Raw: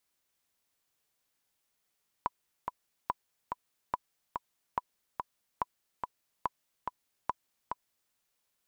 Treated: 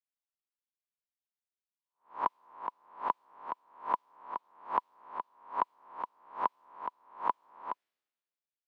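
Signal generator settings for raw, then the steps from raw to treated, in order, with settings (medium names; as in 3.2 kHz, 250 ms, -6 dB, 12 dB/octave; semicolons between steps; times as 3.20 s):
metronome 143 bpm, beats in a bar 2, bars 7, 991 Hz, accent 4.5 dB -16 dBFS
reverse spectral sustain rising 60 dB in 0.47 s; three-band isolator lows -20 dB, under 220 Hz, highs -16 dB, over 3.8 kHz; three bands expanded up and down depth 70%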